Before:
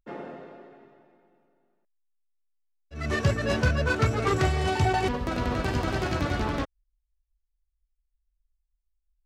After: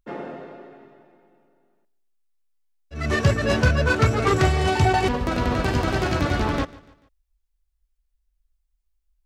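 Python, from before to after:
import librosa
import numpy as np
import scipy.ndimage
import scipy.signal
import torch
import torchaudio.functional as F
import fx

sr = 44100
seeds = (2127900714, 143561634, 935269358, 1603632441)

y = fx.echo_feedback(x, sr, ms=146, feedback_pct=43, wet_db=-21)
y = y * librosa.db_to_amplitude(5.0)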